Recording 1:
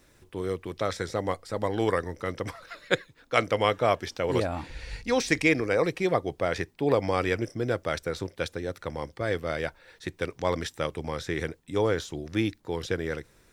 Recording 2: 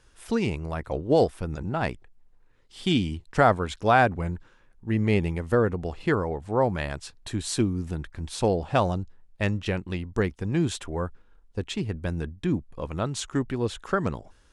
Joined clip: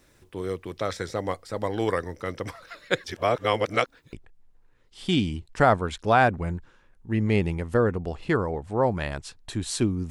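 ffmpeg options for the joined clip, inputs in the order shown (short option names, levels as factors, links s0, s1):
-filter_complex "[0:a]apad=whole_dur=10.1,atrim=end=10.1,asplit=2[s0][s1];[s0]atrim=end=3.042[s2];[s1]atrim=start=3.038:end=4.132,asetpts=PTS-STARTPTS,areverse[s3];[1:a]atrim=start=1.908:end=7.88[s4];[s2][s3]acrossfade=d=0.004:c1=hsin:c2=hsin[s5];[s5][s4]acrossfade=d=0.004:c1=hsin:c2=hsin"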